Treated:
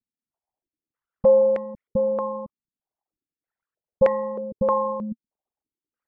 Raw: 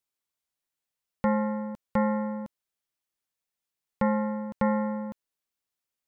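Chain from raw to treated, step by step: resonances exaggerated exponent 3; step-sequenced low-pass 3.2 Hz 230–2000 Hz

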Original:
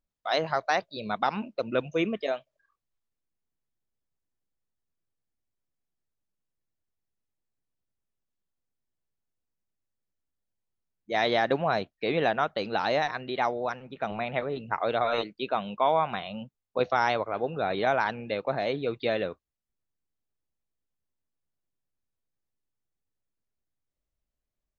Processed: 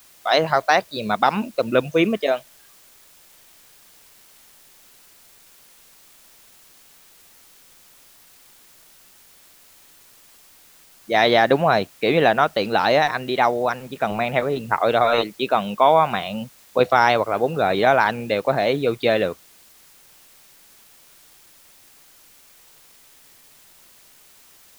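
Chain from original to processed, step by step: word length cut 10-bit, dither triangular; trim +9 dB

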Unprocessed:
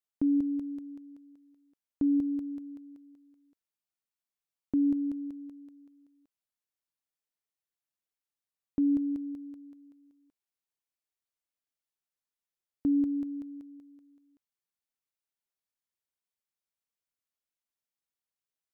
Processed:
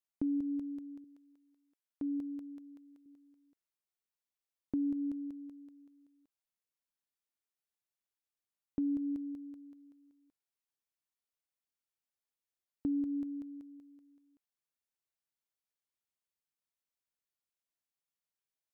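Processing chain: 1.04–3.06 s: bass shelf 310 Hz -11.5 dB; compression, threshold -27 dBFS, peak gain reduction 4 dB; trim -3.5 dB

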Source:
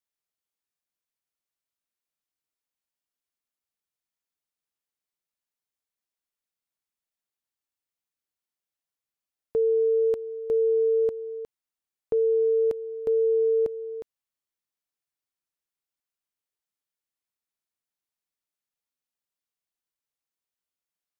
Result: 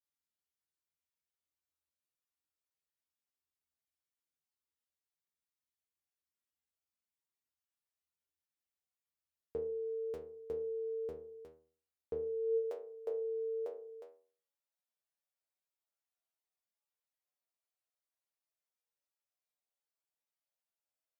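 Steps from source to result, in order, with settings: high-pass sweep 62 Hz -> 580 Hz, 12.10–12.63 s; inharmonic resonator 77 Hz, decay 0.53 s, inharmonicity 0.002; trim +3.5 dB

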